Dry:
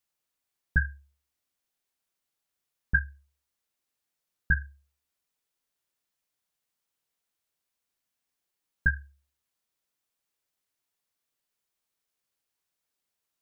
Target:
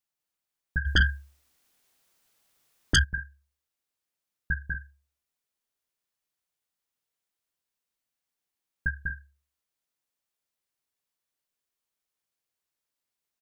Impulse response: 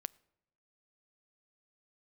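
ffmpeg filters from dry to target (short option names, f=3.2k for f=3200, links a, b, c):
-filter_complex "[0:a]aecho=1:1:195.3|242:0.631|0.282,asplit=3[a][b][c];[a]afade=t=out:st=0.85:d=0.02[d];[b]aeval=exprs='0.299*sin(PI/2*4.47*val(0)/0.299)':c=same,afade=t=in:st=0.85:d=0.02,afade=t=out:st=3.03:d=0.02[e];[c]afade=t=in:st=3.03:d=0.02[f];[d][e][f]amix=inputs=3:normalize=0,volume=-4.5dB"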